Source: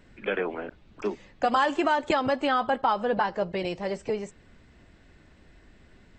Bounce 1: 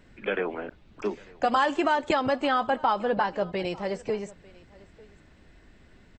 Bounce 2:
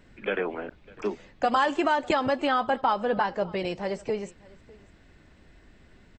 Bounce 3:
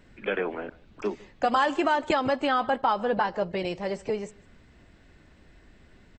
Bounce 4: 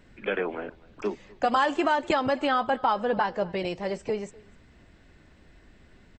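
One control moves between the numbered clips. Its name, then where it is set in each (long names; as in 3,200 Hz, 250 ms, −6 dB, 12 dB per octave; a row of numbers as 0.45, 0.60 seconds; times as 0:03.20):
single-tap delay, delay time: 898, 601, 153, 251 milliseconds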